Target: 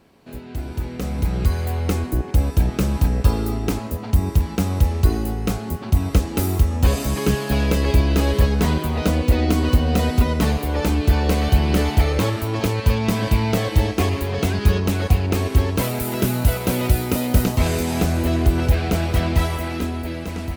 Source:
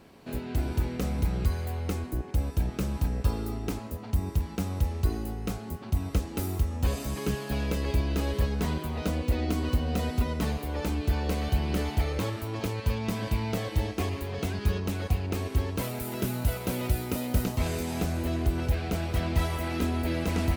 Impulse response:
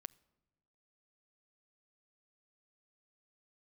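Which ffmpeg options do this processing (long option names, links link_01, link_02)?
-af "dynaudnorm=framelen=240:gausssize=11:maxgain=14.5dB,volume=-1.5dB"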